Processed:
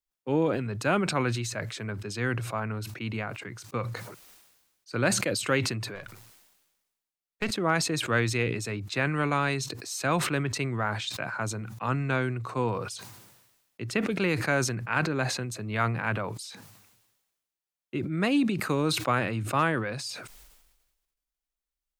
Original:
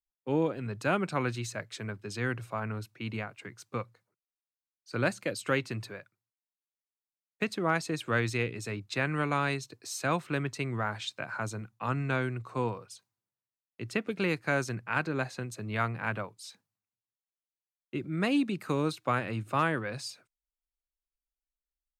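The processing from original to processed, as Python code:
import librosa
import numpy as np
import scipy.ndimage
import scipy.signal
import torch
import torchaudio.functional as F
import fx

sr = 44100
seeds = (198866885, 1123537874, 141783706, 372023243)

y = fx.halfwave_gain(x, sr, db=-7.0, at=(5.95, 7.51))
y = fx.sustainer(y, sr, db_per_s=47.0)
y = y * librosa.db_to_amplitude(2.5)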